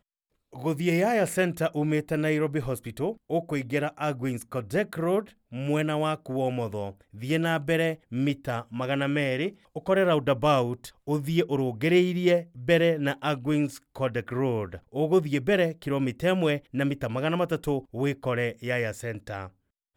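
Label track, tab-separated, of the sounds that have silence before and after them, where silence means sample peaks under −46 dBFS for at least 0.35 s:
0.530000	19.490000	sound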